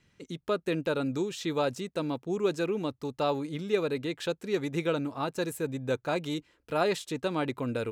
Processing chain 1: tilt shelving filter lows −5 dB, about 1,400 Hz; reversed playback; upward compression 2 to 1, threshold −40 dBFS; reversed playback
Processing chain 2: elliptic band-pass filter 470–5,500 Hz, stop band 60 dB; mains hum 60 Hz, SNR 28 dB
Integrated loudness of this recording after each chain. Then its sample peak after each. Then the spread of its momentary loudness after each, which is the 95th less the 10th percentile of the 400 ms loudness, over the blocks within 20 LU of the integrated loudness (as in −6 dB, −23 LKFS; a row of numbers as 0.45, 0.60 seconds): −34.0, −34.5 LKFS; −13.5, −16.0 dBFS; 5, 7 LU